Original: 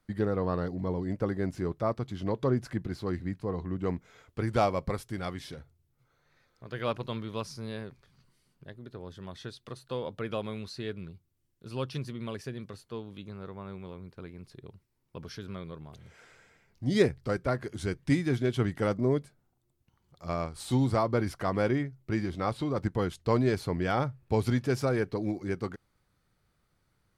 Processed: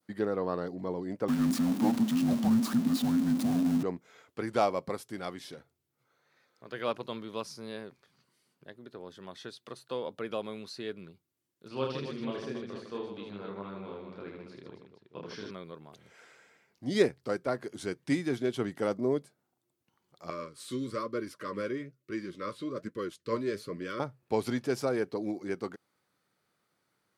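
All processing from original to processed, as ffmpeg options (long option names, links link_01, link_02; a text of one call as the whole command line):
ffmpeg -i in.wav -filter_complex "[0:a]asettb=1/sr,asplit=3[link_01][link_02][link_03];[link_01]atrim=end=1.284[link_04];[link_02]atrim=start=1.28:end=3.83,asetpts=PTS-STARTPTS,afade=type=in:duration=0.004:curve=qsin,afade=type=out:start_time=2.546:duration=0.004:curve=qsin,aeval=exprs='val(0)+0.5*0.0299*sgn(val(0))':channel_layout=same,equalizer=frequency=98:width=0.89:gain=11,afreqshift=-350[link_05];[link_03]atrim=start=3.826[link_06];[link_04][link_05]acrossfade=duration=0.004:curve1=hsin:curve2=qsin[link_07];[link_07][link_06]acrossfade=duration=0.004:curve1=qsin:curve2=hsin,asettb=1/sr,asplit=3[link_08][link_09][link_10];[link_08]atrim=end=11.684[link_11];[link_09]atrim=start=11.68:end=15.51,asetpts=PTS-STARTPTS,afade=type=in:duration=0.004:curve=qsin,afade=type=out:start_time=3.826:duration=0.004:curve=qsin,lowpass=4400,aecho=1:1:30|78|154.8|277.7|474.3:0.794|0.631|0.501|0.398|0.316,atrim=end_sample=168903[link_12];[link_10]atrim=start=15.506[link_13];[link_11][link_12]acrossfade=duration=0.004:curve1=hsin:curve2=qsin[link_14];[link_14][link_13]acrossfade=duration=0.004:curve1=qsin:curve2=hsin,asettb=1/sr,asplit=3[link_15][link_16][link_17];[link_15]atrim=end=20.304[link_18];[link_16]atrim=start=20.3:end=24,asetpts=PTS-STARTPTS,afade=type=in:duration=0.004:curve=qsin,afade=type=out:start_time=3.696:duration=0.004:curve=qsin,asuperstop=centerf=790:order=20:qfactor=2.1,flanger=delay=2.6:depth=8.1:regen=59:speed=1.1:shape=sinusoidal[link_19];[link_17]atrim=start=23.996[link_20];[link_18][link_19]acrossfade=duration=0.004:curve1=hsin:curve2=qsin[link_21];[link_21][link_20]acrossfade=duration=0.004:curve1=qsin:curve2=hsin,highpass=240,adynamicequalizer=threshold=0.00355:dfrequency=1900:dqfactor=0.8:tfrequency=1900:tqfactor=0.8:attack=5:release=100:ratio=0.375:range=2.5:mode=cutabove:tftype=bell" out.wav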